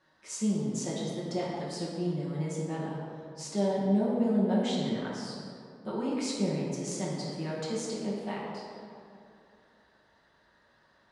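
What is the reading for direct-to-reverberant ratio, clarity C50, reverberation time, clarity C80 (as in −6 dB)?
−7.5 dB, −1.0 dB, 2.6 s, 1.0 dB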